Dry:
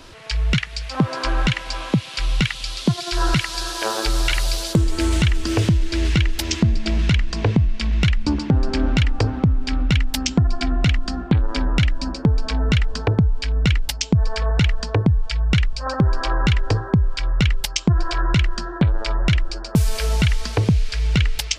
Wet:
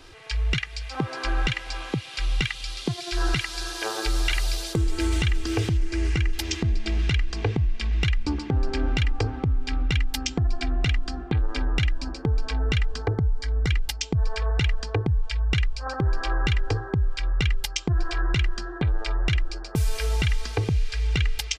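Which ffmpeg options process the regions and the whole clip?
-filter_complex "[0:a]asettb=1/sr,asplit=3[s0][s1][s2];[s0]atrim=end=5.774[s3];[s1]atrim=start=5.77:end=6.33,asetpts=PTS-STARTPTS,afade=t=in:d=0.004:c=qsin,afade=t=out:st=0.556:d=0.004:c=qsin,lowpass=f=11000:w=0.5412,lowpass=f=11000:w=1.3066,equalizer=f=3600:w=2.1:g=-9[s4];[s2]atrim=start=6.326[s5];[s3][s4]acrossfade=d=0.004:c1=hsin:c2=qsin[s6];[s6][s5]acrossfade=d=0.004:c1=qsin:c2=hsin,asettb=1/sr,asplit=3[s7][s8][s9];[s7]atrim=end=13.024[s10];[s8]atrim=start=13.02:end=13.7,asetpts=PTS-STARTPTS,afade=t=in:d=0.004:c=qsin,afade=t=out:st=0.676:d=0.004:c=qsin,asuperstop=centerf=2600:order=4:qfactor=3.9,equalizer=f=3400:w=3.3:g=-7.5[s11];[s9]atrim=start=13.696[s12];[s10][s11]acrossfade=d=0.004:c1=hsin:c2=qsin[s13];[s13][s12]acrossfade=d=0.004:c1=qsin:c2=hsin,equalizer=f=2200:w=1.5:g=2.5,aecho=1:1:2.5:0.51,volume=0.447"

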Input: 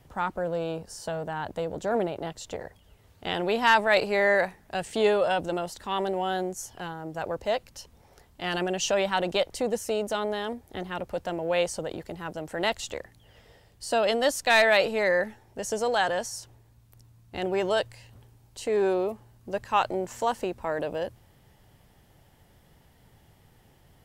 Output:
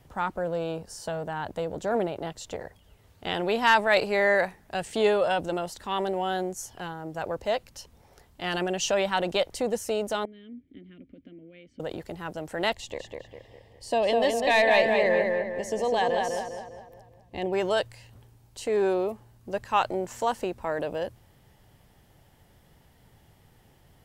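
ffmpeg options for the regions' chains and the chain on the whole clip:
-filter_complex "[0:a]asettb=1/sr,asplit=3[s0][s1][s2];[s0]atrim=end=10.254[s3];[s1]atrim=start=10.25:end=11.8,asetpts=PTS-STARTPTS,afade=t=in:d=0.004:c=qsin,afade=t=out:st=1.546:d=0.004:c=qsin,aemphasis=mode=reproduction:type=riaa,acompressor=threshold=0.0355:ratio=3:attack=3.2:release=140:knee=1:detection=peak,asplit=3[s4][s5][s6];[s4]bandpass=f=270:t=q:w=8,volume=1[s7];[s5]bandpass=f=2290:t=q:w=8,volume=0.501[s8];[s6]bandpass=f=3010:t=q:w=8,volume=0.355[s9];[s7][s8][s9]amix=inputs=3:normalize=0[s10];[s2]atrim=start=11.796[s11];[s3][s10]acrossfade=d=0.004:c1=hsin:c2=qsin[s12];[s12][s11]acrossfade=d=0.004:c1=qsin:c2=hsin,asettb=1/sr,asplit=3[s13][s14][s15];[s13]atrim=end=12.734[s16];[s14]atrim=start=12.73:end=17.53,asetpts=PTS-STARTPTS,afade=t=in:d=0.004:c=qsin,afade=t=out:st=4.796:d=0.004:c=qsin,asuperstop=centerf=1400:order=4:qfactor=2.8,highshelf=f=4300:g=-8.5,asplit=2[s17][s18];[s18]adelay=202,lowpass=f=3100:p=1,volume=0.708,asplit=2[s19][s20];[s20]adelay=202,lowpass=f=3100:p=1,volume=0.46,asplit=2[s21][s22];[s22]adelay=202,lowpass=f=3100:p=1,volume=0.46,asplit=2[s23][s24];[s24]adelay=202,lowpass=f=3100:p=1,volume=0.46,asplit=2[s25][s26];[s26]adelay=202,lowpass=f=3100:p=1,volume=0.46,asplit=2[s27][s28];[s28]adelay=202,lowpass=f=3100:p=1,volume=0.46[s29];[s17][s19][s21][s23][s25][s27][s29]amix=inputs=7:normalize=0,atrim=end_sample=211680[s30];[s15]atrim=start=17.526[s31];[s16][s30]acrossfade=d=0.004:c1=hsin:c2=qsin[s32];[s32][s31]acrossfade=d=0.004:c1=qsin:c2=hsin"

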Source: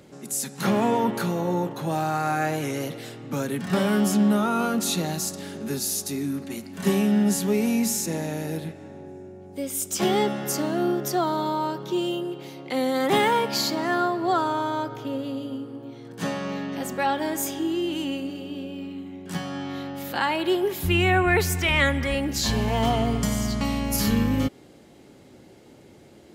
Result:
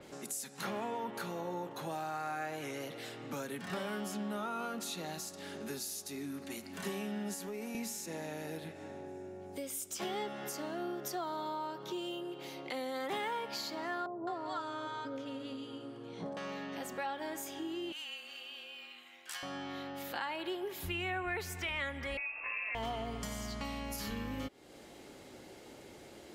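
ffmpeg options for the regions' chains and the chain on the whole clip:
-filter_complex "[0:a]asettb=1/sr,asplit=3[s0][s1][s2];[s0]atrim=end=7.344[s3];[s1]atrim=start=7.34:end=7.75,asetpts=PTS-STARTPTS,afade=t=in:d=0.004:c=qsin,afade=t=out:st=0.406:d=0.004:c=qsin,highpass=f=180:w=0.5412,highpass=f=180:w=1.3066,equalizer=f=3400:t=o:w=0.77:g=-5.5,acompressor=threshold=0.0631:ratio=6:attack=3.2:release=140:knee=1:detection=peak[s4];[s2]atrim=start=7.746[s5];[s3][s4]acrossfade=d=0.004:c1=hsin:c2=qsin[s6];[s6][s5]acrossfade=d=0.004:c1=qsin:c2=hsin,asettb=1/sr,asplit=3[s7][s8][s9];[s7]atrim=end=14.064[s10];[s8]atrim=start=14.06:end=16.37,asetpts=PTS-STARTPTS,afade=t=in:d=0.004:c=qsin,afade=t=out:st=2.306:d=0.004:c=qsin,lowpass=f=9900:w=0.5412,lowpass=f=9900:w=1.3066,acrossover=split=890[s11][s12];[s12]adelay=210[s13];[s11][s13]amix=inputs=2:normalize=0,atrim=end_sample=101871[s14];[s9]atrim=start=16.366[s15];[s10][s14]acrossfade=d=0.004:c1=hsin:c2=qsin[s16];[s16][s15]acrossfade=d=0.004:c1=qsin:c2=hsin,asettb=1/sr,asplit=3[s17][s18][s19];[s17]atrim=end=17.924[s20];[s18]atrim=start=17.92:end=19.43,asetpts=PTS-STARTPTS,afade=t=in:d=0.004:c=qsin,afade=t=out:st=1.506:d=0.004:c=qsin,highpass=1400,afreqshift=-30[s21];[s19]atrim=start=19.426[s22];[s20][s21]acrossfade=d=0.004:c1=hsin:c2=qsin[s23];[s23][s22]acrossfade=d=0.004:c1=qsin:c2=hsin,asettb=1/sr,asplit=3[s24][s25][s26];[s24]atrim=end=22.174[s27];[s25]atrim=start=22.17:end=22.75,asetpts=PTS-STARTPTS,afade=t=in:d=0.004:c=qsin,afade=t=out:st=0.576:d=0.004:c=qsin,highpass=f=180:p=1,lowpass=f=2400:t=q:w=0.5098,lowpass=f=2400:t=q:w=0.6013,lowpass=f=2400:t=q:w=0.9,lowpass=f=2400:t=q:w=2.563,afreqshift=-2800[s28];[s26]atrim=start=22.746[s29];[s27][s28]acrossfade=d=0.004:c1=hsin:c2=qsin[s30];[s30][s29]acrossfade=d=0.004:c1=qsin:c2=hsin,equalizer=f=140:t=o:w=2.6:g=-10,acompressor=threshold=0.00562:ratio=2.5,adynamicequalizer=threshold=0.00141:dfrequency=4800:dqfactor=0.7:tfrequency=4800:tqfactor=0.7:attack=5:release=100:ratio=0.375:range=3:mode=cutabove:tftype=highshelf,volume=1.26"

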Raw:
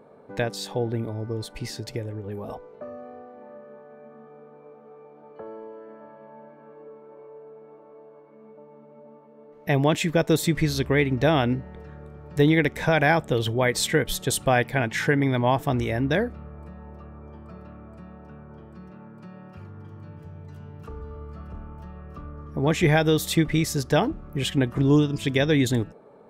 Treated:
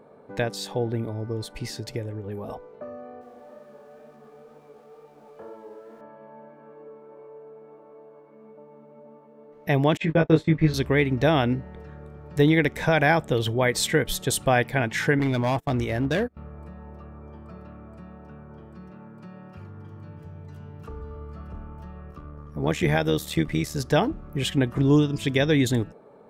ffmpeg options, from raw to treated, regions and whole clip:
-filter_complex "[0:a]asettb=1/sr,asplit=3[s0][s1][s2];[s0]atrim=end=3.214[s3];[s1]atrim=start=3.21:end=6.01,asetpts=PTS-STARTPTS,afade=t=in:d=0.004:c=qsin,afade=t=out:st=2.796:d=0.004:c=qsin,aeval=exprs='val(0)+0.5*0.00178*sgn(val(0))':c=same,flanger=delay=19:depth=6.7:speed=2.1[s4];[s2]atrim=start=6.006[s5];[s3][s4]acrossfade=d=0.004:c1=hsin:c2=qsin[s6];[s6][s5]acrossfade=d=0.004:c1=qsin:c2=hsin,asettb=1/sr,asplit=3[s7][s8][s9];[s7]atrim=end=9.974[s10];[s8]atrim=start=9.97:end=10.74,asetpts=PTS-STARTPTS,afade=t=in:d=0.004:c=qsin,afade=t=out:st=0.766:d=0.004:c=qsin,agate=range=0.0224:threshold=0.0398:ratio=16:release=100:detection=peak,lowpass=2400,asplit=2[s11][s12];[s12]adelay=19,volume=0.668[s13];[s11][s13]amix=inputs=2:normalize=0,atrim=end_sample=33957[s14];[s9]atrim=start=10.736[s15];[s10][s14]acrossfade=d=0.004:c1=hsin:c2=qsin[s16];[s16][s15]acrossfade=d=0.004:c1=qsin:c2=hsin,asettb=1/sr,asplit=3[s17][s18][s19];[s17]atrim=end=15.194[s20];[s18]atrim=start=15.19:end=16.37,asetpts=PTS-STARTPTS,afade=t=in:d=0.004:c=qsin,afade=t=out:st=1.176:d=0.004:c=qsin,agate=range=0.0316:threshold=0.0398:ratio=16:release=100:detection=peak,acompressor=mode=upward:threshold=0.0398:ratio=2.5:attack=3.2:release=140:knee=2.83:detection=peak,asoftclip=type=hard:threshold=0.112[s21];[s19]atrim=start=16.366[s22];[s20][s21]acrossfade=d=0.004:c1=hsin:c2=qsin[s23];[s23][s22]acrossfade=d=0.004:c1=qsin:c2=hsin,asettb=1/sr,asplit=3[s24][s25][s26];[s24]atrim=end=22.114[s27];[s25]atrim=start=22.11:end=23.8,asetpts=PTS-STARTPTS,afade=t=in:d=0.004:c=qsin,afade=t=out:st=1.686:d=0.004:c=qsin,acrossover=split=3400[s28][s29];[s29]acompressor=threshold=0.0178:ratio=4:attack=1:release=60[s30];[s28][s30]amix=inputs=2:normalize=0,highshelf=f=6400:g=5,tremolo=f=75:d=0.667[s31];[s26]atrim=start=23.796[s32];[s27][s31]acrossfade=d=0.004:c1=hsin:c2=qsin[s33];[s33][s32]acrossfade=d=0.004:c1=qsin:c2=hsin"

